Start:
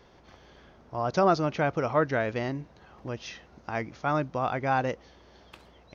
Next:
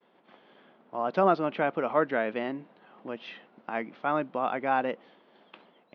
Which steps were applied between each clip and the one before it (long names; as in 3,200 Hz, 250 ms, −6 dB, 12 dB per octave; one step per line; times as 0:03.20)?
elliptic band-pass filter 200–3,300 Hz, stop band 50 dB
downward expander −53 dBFS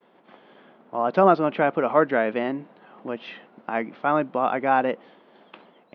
high-shelf EQ 3,500 Hz −7 dB
level +6.5 dB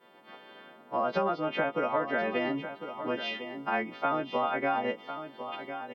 every partial snapped to a pitch grid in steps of 2 semitones
downward compressor 12 to 1, threshold −25 dBFS, peak gain reduction 14 dB
single-tap delay 1,052 ms −10 dB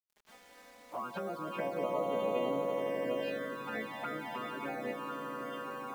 echo that builds up and dies away 83 ms, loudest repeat 8, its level −10.5 dB
bit-depth reduction 8 bits, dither none
flanger swept by the level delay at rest 4.9 ms, full sweep at −20.5 dBFS
level −7 dB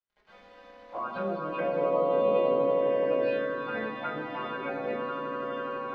high-frequency loss of the air 240 metres
convolution reverb RT60 0.80 s, pre-delay 4 ms, DRR −3 dB